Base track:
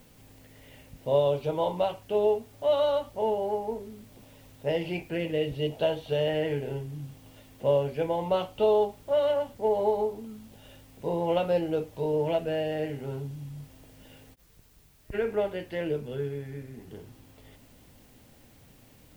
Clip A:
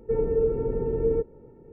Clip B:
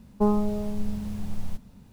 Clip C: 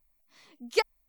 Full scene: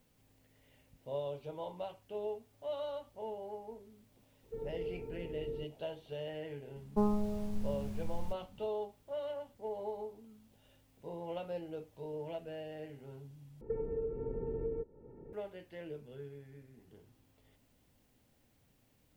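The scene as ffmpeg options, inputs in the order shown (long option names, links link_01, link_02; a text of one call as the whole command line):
ffmpeg -i bed.wav -i cue0.wav -i cue1.wav -filter_complex "[1:a]asplit=2[link_01][link_02];[0:a]volume=-15dB[link_03];[link_02]acompressor=threshold=-31dB:ratio=10:attack=10:release=901:knee=1:detection=peak[link_04];[link_03]asplit=2[link_05][link_06];[link_05]atrim=end=13.614[link_07];[link_04]atrim=end=1.72,asetpts=PTS-STARTPTS,volume=-2dB[link_08];[link_06]atrim=start=15.326[link_09];[link_01]atrim=end=1.72,asetpts=PTS-STARTPTS,volume=-17.5dB,afade=type=in:duration=0.004:curve=hsin,afade=type=out:start_time=1.716:duration=0.004:curve=hsin,adelay=4430[link_10];[2:a]atrim=end=1.92,asetpts=PTS-STARTPTS,volume=-8dB,afade=type=in:duration=0.004:curve=hsin,afade=type=out:start_time=1.916:duration=0.004:curve=hsin,adelay=6760[link_11];[link_07][link_08]acrossfade=duration=0.004:curve1=hsin:curve2=hsin[link_12];[link_12][link_09]acrossfade=duration=0.004:curve1=hsin:curve2=hsin[link_13];[link_13][link_10][link_11]amix=inputs=3:normalize=0" out.wav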